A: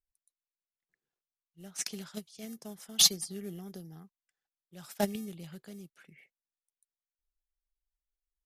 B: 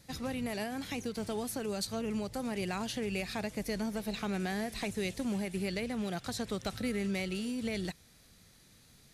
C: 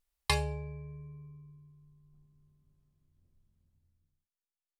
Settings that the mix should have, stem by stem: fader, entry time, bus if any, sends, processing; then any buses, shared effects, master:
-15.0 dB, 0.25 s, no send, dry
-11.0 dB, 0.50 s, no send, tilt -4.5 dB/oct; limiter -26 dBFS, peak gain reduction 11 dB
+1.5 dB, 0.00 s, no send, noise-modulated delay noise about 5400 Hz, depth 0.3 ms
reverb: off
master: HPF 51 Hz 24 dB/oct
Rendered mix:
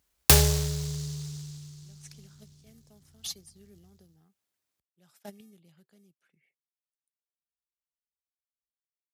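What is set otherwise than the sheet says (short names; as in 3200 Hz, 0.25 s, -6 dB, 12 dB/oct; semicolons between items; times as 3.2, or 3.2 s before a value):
stem B: muted; stem C +1.5 dB -> +12.0 dB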